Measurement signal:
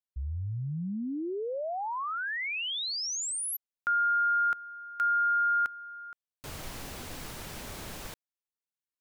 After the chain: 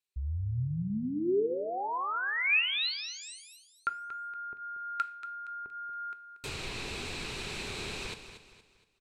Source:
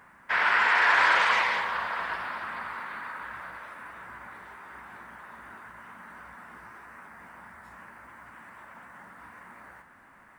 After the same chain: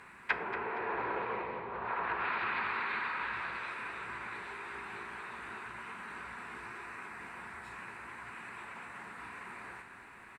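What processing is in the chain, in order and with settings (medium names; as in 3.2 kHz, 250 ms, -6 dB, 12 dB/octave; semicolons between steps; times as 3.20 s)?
low-pass that closes with the level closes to 470 Hz, closed at -25.5 dBFS; graphic EQ with 31 bands 400 Hz +8 dB, 630 Hz -5 dB, 2.5 kHz +12 dB, 4 kHz +10 dB, 8 kHz +7 dB; feedback delay 234 ms, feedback 38%, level -11 dB; two-slope reverb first 0.45 s, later 1.6 s, from -26 dB, DRR 11.5 dB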